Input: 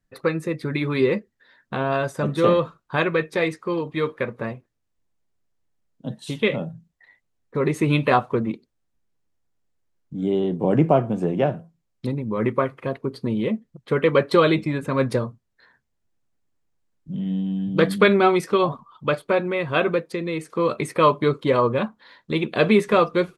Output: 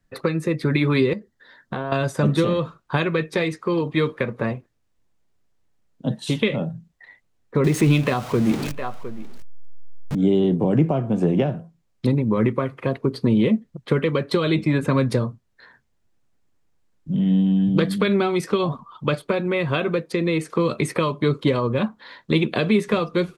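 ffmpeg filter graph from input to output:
ffmpeg -i in.wav -filter_complex "[0:a]asettb=1/sr,asplit=3[link_01][link_02][link_03];[link_01]atrim=end=1.134[link_04];[link_02]atrim=start=1.13:end=1.92,asetpts=PTS-STARTPTS,afade=type=in:duration=0.004:curve=qsin,afade=type=out:start_time=0.786:duration=0.004:curve=qsin,equalizer=frequency=2500:width=4.5:gain=-9,acompressor=threshold=-30dB:ratio=10:attack=3.2:release=140:knee=1:detection=peak[link_05];[link_03]atrim=start=1.916[link_06];[link_04][link_05]acrossfade=duration=0.004:curve1=hsin:curve2=qsin[link_07];[link_07][link_06]acrossfade=duration=0.004:curve1=qsin:curve2=hsin,asettb=1/sr,asplit=3[link_08][link_09][link_10];[link_08]atrim=end=7.644[link_11];[link_09]atrim=start=7.64:end=10.15,asetpts=PTS-STARTPTS,afade=type=in:duration=0.004:curve=qsin,afade=type=out:start_time=2.506:duration=0.004:curve=qsin,aeval=exprs='val(0)+0.5*0.0335*sgn(val(0))':channel_layout=same,aecho=1:1:709:0.1,atrim=end_sample=110691[link_12];[link_10]atrim=start=10.146[link_13];[link_11][link_12]acrossfade=duration=0.004:curve1=hsin:curve2=qsin[link_14];[link_14][link_13]acrossfade=duration=0.004:curve1=qsin:curve2=hsin,highshelf=frequency=9400:gain=-5.5,alimiter=limit=-12.5dB:level=0:latency=1:release=445,acrossover=split=290|3000[link_15][link_16][link_17];[link_16]acompressor=threshold=-29dB:ratio=6[link_18];[link_15][link_18][link_17]amix=inputs=3:normalize=0,volume=7dB" out.wav

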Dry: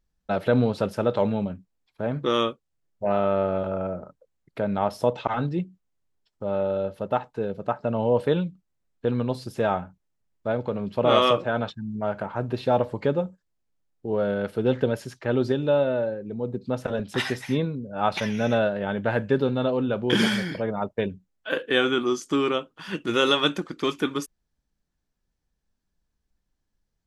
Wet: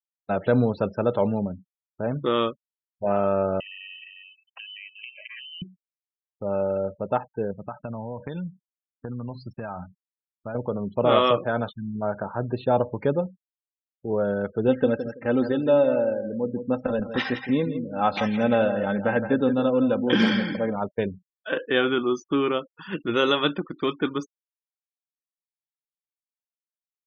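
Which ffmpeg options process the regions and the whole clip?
ffmpeg -i in.wav -filter_complex "[0:a]asettb=1/sr,asplit=3[link_01][link_02][link_03];[link_01]atrim=end=3.604[link_04];[link_02]atrim=start=3.6:end=5.62,asetpts=PTS-STARTPTS,afade=type=in:duration=0.004:curve=qsin,afade=type=out:start_time=2.016:duration=0.004:curve=qsin,aecho=1:1:355|710:0.158|0.0285,atrim=end_sample=89082,acompressor=threshold=-36dB:ratio=6:attack=3.2:release=140:knee=1:detection=peak,lowpass=frequency=2700:width_type=q:width=0.5098,lowpass=frequency=2700:width_type=q:width=0.6013,lowpass=frequency=2700:width_type=q:width=0.9,lowpass=frequency=2700:width_type=q:width=2.563,afreqshift=-3200[link_05];[link_03]atrim=start=5.616[link_06];[link_04][link_05]acrossfade=duration=0.004:curve1=hsin:curve2=qsin[link_07];[link_07][link_06]acrossfade=duration=0.004:curve1=qsin:curve2=hsin,asettb=1/sr,asplit=3[link_08][link_09][link_10];[link_08]atrim=end=7.514[link_11];[link_09]atrim=start=7.51:end=10.55,asetpts=PTS-STARTPTS,afade=type=in:duration=0.004:curve=qsin,afade=type=out:start_time=3.036:duration=0.004:curve=qsin,equalizer=frequency=430:width=1.4:gain=-9.5,acompressor=threshold=-28dB:ratio=16:attack=3.2:release=140:knee=1:detection=peak[link_12];[link_10]atrim=start=10.546[link_13];[link_11][link_12]acrossfade=duration=0.004:curve1=hsin:curve2=qsin[link_14];[link_14][link_13]acrossfade=duration=0.004:curve1=qsin:curve2=hsin,asettb=1/sr,asplit=3[link_15][link_16][link_17];[link_15]atrim=end=14.684[link_18];[link_16]atrim=start=14.68:end=20.76,asetpts=PTS-STARTPTS,afade=type=in:duration=0.004:curve=qsin,afade=type=out:start_time=6.076:duration=0.004:curve=qsin,aecho=1:1:3.8:0.52,atrim=end_sample=268128,aecho=1:1:165|330|495:0.316|0.0664|0.0139,atrim=end_sample=268128[link_19];[link_17]atrim=start=20.756[link_20];[link_18][link_19]acrossfade=duration=0.004:curve1=hsin:curve2=qsin[link_21];[link_21][link_20]acrossfade=duration=0.004:curve1=qsin:curve2=hsin,aemphasis=mode=reproduction:type=50fm,afftfilt=real='re*gte(hypot(re,im),0.0112)':imag='im*gte(hypot(re,im),0.0112)':win_size=1024:overlap=0.75" out.wav

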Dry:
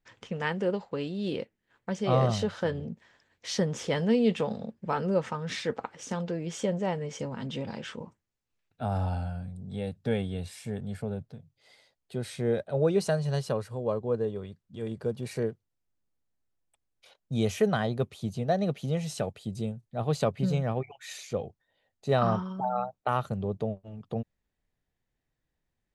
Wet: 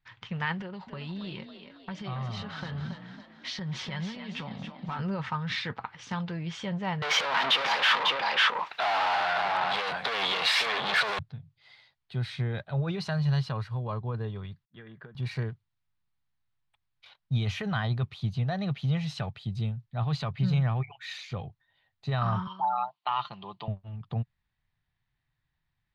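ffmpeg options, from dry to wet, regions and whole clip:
ffmpeg -i in.wav -filter_complex "[0:a]asettb=1/sr,asplit=3[link_01][link_02][link_03];[link_01]atrim=end=0.594[link_04];[link_02]atrim=start=0.59:end=4.99,asetpts=PTS-STARTPTS,afade=type=in:duration=0.004:curve=qsin,afade=type=out:start_time=4.396:duration=0.004:curve=qsin,acompressor=threshold=-34dB:ratio=5:attack=3.2:release=140:knee=1:detection=peak,aecho=1:1:5.4:0.44,atrim=end_sample=194040,asplit=7[link_05][link_06][link_07][link_08][link_09][link_10][link_11];[link_06]adelay=277,afreqshift=38,volume=-7.5dB[link_12];[link_07]adelay=554,afreqshift=76,volume=-13.7dB[link_13];[link_08]adelay=831,afreqshift=114,volume=-19.9dB[link_14];[link_09]adelay=1108,afreqshift=152,volume=-26.1dB[link_15];[link_10]adelay=1385,afreqshift=190,volume=-32.3dB[link_16];[link_11]adelay=1662,afreqshift=228,volume=-38.5dB[link_17];[link_05][link_12][link_13][link_14][link_15][link_16][link_17]amix=inputs=7:normalize=0,atrim=end_sample=194040[link_18];[link_03]atrim=start=4.986[link_19];[link_04][link_18]acrossfade=duration=0.004:curve1=hsin:curve2=qsin[link_20];[link_20][link_19]acrossfade=duration=0.004:curve1=qsin:curve2=hsin,asettb=1/sr,asplit=3[link_21][link_22][link_23];[link_21]atrim=end=7.024[link_24];[link_22]atrim=start=7.02:end=11.19,asetpts=PTS-STARTPTS,afade=type=in:duration=0.004:curve=qsin,afade=type=out:start_time=4.166:duration=0.004:curve=qsin,aecho=1:1:547:0.251,atrim=end_sample=183897,asplit=2[link_25][link_26];[link_26]highpass=frequency=720:poles=1,volume=42dB,asoftclip=type=tanh:threshold=-16dB[link_27];[link_25][link_27]amix=inputs=2:normalize=0,lowpass=frequency=6200:poles=1,volume=-6dB,highpass=frequency=530:width_type=q:width=1.6[link_28];[link_23]atrim=start=11.186[link_29];[link_24][link_28]acrossfade=duration=0.004:curve1=hsin:curve2=qsin[link_30];[link_30][link_29]acrossfade=duration=0.004:curve1=qsin:curve2=hsin,asettb=1/sr,asplit=3[link_31][link_32][link_33];[link_31]atrim=end=14.654[link_34];[link_32]atrim=start=14.65:end=15.15,asetpts=PTS-STARTPTS,afade=type=in:duration=0.004:curve=qsin,afade=type=out:start_time=0.496:duration=0.004:curve=qsin,agate=range=-33dB:threshold=-44dB:ratio=3:release=100:detection=peak,highpass=240,equalizer=frequency=830:width_type=q:width=4:gain=-9,equalizer=frequency=1700:width_type=q:width=4:gain=8,equalizer=frequency=2500:width_type=q:width=4:gain=-6,lowpass=frequency=3000:width=0.5412,lowpass=frequency=3000:width=1.3066,acompressor=threshold=-38dB:ratio=10:attack=3.2:release=140:knee=1:detection=peak[link_35];[link_33]atrim=start=15.146[link_36];[link_34][link_35]acrossfade=duration=0.004:curve1=hsin:curve2=qsin[link_37];[link_37][link_36]acrossfade=duration=0.004:curve1=qsin:curve2=hsin,asettb=1/sr,asplit=3[link_38][link_39][link_40];[link_38]atrim=end=22.474[link_41];[link_39]atrim=start=22.47:end=23.68,asetpts=PTS-STARTPTS,afade=type=in:duration=0.004:curve=qsin,afade=type=out:start_time=1.206:duration=0.004:curve=qsin,highpass=410,equalizer=frequency=500:width_type=q:width=4:gain=-7,equalizer=frequency=1000:width_type=q:width=4:gain=8,equalizer=frequency=1500:width_type=q:width=4:gain=-7,equalizer=frequency=3000:width_type=q:width=4:gain=10,equalizer=frequency=4400:width_type=q:width=4:gain=7,lowpass=frequency=5700:width=0.5412,lowpass=frequency=5700:width=1.3066,aecho=1:1:5.8:0.37,atrim=end_sample=53361[link_42];[link_40]atrim=start=23.676[link_43];[link_41][link_42]acrossfade=duration=0.004:curve1=hsin:curve2=qsin[link_44];[link_44][link_43]acrossfade=duration=0.004:curve1=qsin:curve2=hsin,aemphasis=mode=reproduction:type=50fm,alimiter=limit=-20.5dB:level=0:latency=1:release=19,equalizer=frequency=125:width_type=o:width=1:gain=8,equalizer=frequency=250:width_type=o:width=1:gain=-6,equalizer=frequency=500:width_type=o:width=1:gain=-12,equalizer=frequency=1000:width_type=o:width=1:gain=6,equalizer=frequency=2000:width_type=o:width=1:gain=4,equalizer=frequency=4000:width_type=o:width=1:gain=9,equalizer=frequency=8000:width_type=o:width=1:gain=-8" out.wav

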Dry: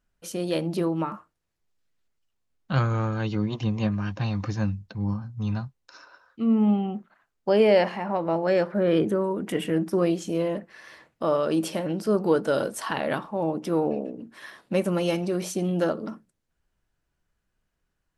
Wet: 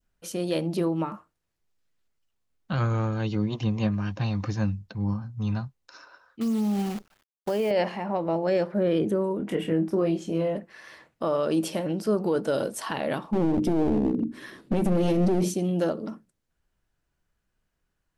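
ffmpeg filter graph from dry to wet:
ffmpeg -i in.wav -filter_complex "[0:a]asettb=1/sr,asplit=3[link_01][link_02][link_03];[link_01]atrim=end=6.414[link_04];[link_02]atrim=start=6.41:end=7.71,asetpts=PTS-STARTPTS,afade=type=in:duration=0.004:curve=qsin,afade=type=out:start_time=1.296:duration=0.004:curve=qsin,acrusher=bits=7:dc=4:mix=0:aa=0.000001,acompressor=threshold=-22dB:ratio=6:attack=3.2:release=140:knee=1:detection=peak[link_05];[link_03]atrim=start=7.706[link_06];[link_04][link_05]acrossfade=duration=0.004:curve1=hsin:curve2=qsin[link_07];[link_07][link_06]acrossfade=duration=0.004:curve1=qsin:curve2=hsin,asettb=1/sr,asplit=3[link_08][link_09][link_10];[link_08]atrim=end=9.374[link_11];[link_09]atrim=start=9.37:end=10.56,asetpts=PTS-STARTPTS,afade=type=in:duration=0.004:curve=qsin,afade=type=out:start_time=1.186:duration=0.004:curve=qsin,highshelf=frequency=4300:gain=-11,asplit=2[link_12][link_13];[link_13]adelay=25,volume=-6.5dB[link_14];[link_12][link_14]amix=inputs=2:normalize=0,atrim=end_sample=52479[link_15];[link_10]atrim=start=10.556[link_16];[link_11][link_15]acrossfade=duration=0.004:curve1=hsin:curve2=qsin[link_17];[link_17][link_16]acrossfade=duration=0.004:curve1=qsin:curve2=hsin,asettb=1/sr,asplit=3[link_18][link_19][link_20];[link_18]atrim=end=13.314[link_21];[link_19]atrim=start=13.31:end=15.54,asetpts=PTS-STARTPTS,afade=type=in:duration=0.004:curve=qsin,afade=type=out:start_time=2.226:duration=0.004:curve=qsin,lowshelf=frequency=480:width_type=q:width=1.5:gain=12,aeval=exprs='clip(val(0),-1,0.112)':channel_layout=same,bandreject=frequency=50:width_type=h:width=6,bandreject=frequency=100:width_type=h:width=6,bandreject=frequency=150:width_type=h:width=6,bandreject=frequency=200:width_type=h:width=6,bandreject=frequency=250:width_type=h:width=6,bandreject=frequency=300:width_type=h:width=6,bandreject=frequency=350:width_type=h:width=6[link_22];[link_20]atrim=start=15.536[link_23];[link_21][link_22]acrossfade=duration=0.004:curve1=hsin:curve2=qsin[link_24];[link_24][link_23]acrossfade=duration=0.004:curve1=qsin:curve2=hsin,adynamicequalizer=threshold=0.00794:dfrequency=1400:dqfactor=1.1:tfrequency=1400:tqfactor=1.1:attack=5:release=100:ratio=0.375:range=3:mode=cutabove:tftype=bell,alimiter=limit=-15.5dB:level=0:latency=1" out.wav

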